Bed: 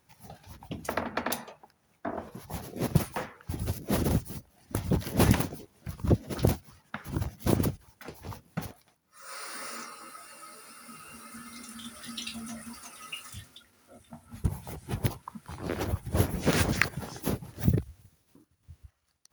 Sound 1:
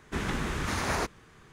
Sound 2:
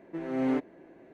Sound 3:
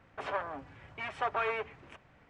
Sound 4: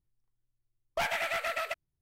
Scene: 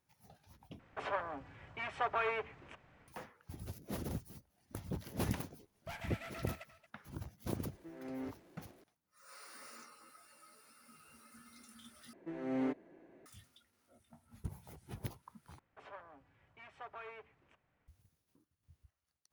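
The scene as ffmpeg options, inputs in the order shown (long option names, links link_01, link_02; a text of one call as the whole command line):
ffmpeg -i bed.wav -i cue0.wav -i cue1.wav -i cue2.wav -i cue3.wav -filter_complex "[3:a]asplit=2[link_01][link_02];[2:a]asplit=2[link_03][link_04];[0:a]volume=-14dB[link_05];[4:a]aecho=1:1:227:0.188[link_06];[link_03]aeval=exprs='val(0)+0.5*0.00473*sgn(val(0))':channel_layout=same[link_07];[link_05]asplit=4[link_08][link_09][link_10][link_11];[link_08]atrim=end=0.794[link_12];[link_01]atrim=end=2.29,asetpts=PTS-STARTPTS,volume=-2.5dB[link_13];[link_09]atrim=start=3.076:end=12.134[link_14];[link_04]atrim=end=1.13,asetpts=PTS-STARTPTS,volume=-7.5dB[link_15];[link_10]atrim=start=13.256:end=15.594[link_16];[link_02]atrim=end=2.29,asetpts=PTS-STARTPTS,volume=-17dB[link_17];[link_11]atrim=start=17.876[link_18];[link_06]atrim=end=2.01,asetpts=PTS-STARTPTS,volume=-16.5dB,afade=type=in:duration=0.004:curve=hsin,afade=type=out:start_time=2.006:duration=0.004:curve=hsin,adelay=4900[link_19];[link_07]atrim=end=1.13,asetpts=PTS-STARTPTS,volume=-16dB,afade=type=in:duration=0.004:curve=hsin,afade=type=out:start_time=1.126:duration=0.004:curve=hsin,adelay=7710[link_20];[link_12][link_13]acrossfade=duration=0.004:curve1=hsin:curve2=hsin[link_21];[link_21][link_14]acrossfade=duration=0.004:curve1=hsin:curve2=hsin[link_22];[link_22][link_15]acrossfade=duration=0.004:curve1=hsin:curve2=hsin[link_23];[link_23][link_16]acrossfade=duration=0.004:curve1=hsin:curve2=hsin[link_24];[link_24][link_17]acrossfade=duration=0.004:curve1=hsin:curve2=hsin[link_25];[link_25][link_18]acrossfade=duration=0.004:curve1=hsin:curve2=hsin[link_26];[link_26][link_19][link_20]amix=inputs=3:normalize=0" out.wav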